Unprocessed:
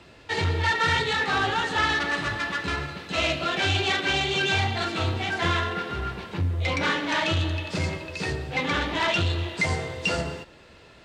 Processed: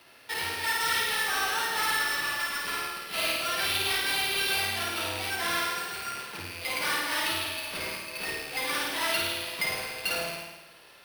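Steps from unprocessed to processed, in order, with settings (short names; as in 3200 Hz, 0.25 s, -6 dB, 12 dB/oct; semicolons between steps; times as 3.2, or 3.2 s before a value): rattling part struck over -35 dBFS, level -25 dBFS; HPF 1100 Hz 6 dB/oct; in parallel at -3.5 dB: soft clip -31 dBFS, distortion -8 dB; on the sum: sample-rate reducer 7100 Hz, jitter 0%; flutter echo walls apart 9.1 m, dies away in 0.99 s; gain -6 dB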